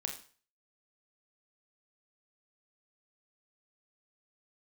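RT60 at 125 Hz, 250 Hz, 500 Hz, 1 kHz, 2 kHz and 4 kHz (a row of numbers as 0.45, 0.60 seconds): 0.45, 0.40, 0.40, 0.45, 0.40, 0.40 seconds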